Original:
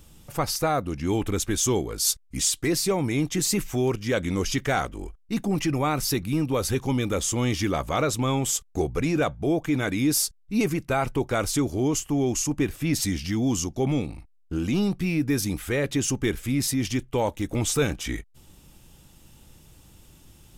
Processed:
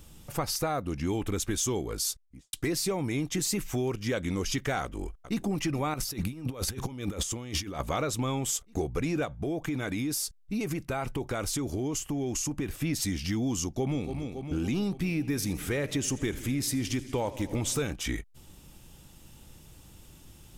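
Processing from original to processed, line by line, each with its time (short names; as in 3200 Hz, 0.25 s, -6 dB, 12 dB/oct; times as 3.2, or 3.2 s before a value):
1.87–2.53 studio fade out
4.82–5.41 echo throw 0.42 s, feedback 75%, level -16 dB
5.94–7.8 negative-ratio compressor -31 dBFS, ratio -0.5
9.25–12.75 compressor, threshold -26 dBFS
13.65–14.14 echo throw 0.28 s, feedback 70%, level -11 dB
14.98–17.82 warbling echo 82 ms, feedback 79%, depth 83 cents, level -19.5 dB
whole clip: compressor 4:1, threshold -27 dBFS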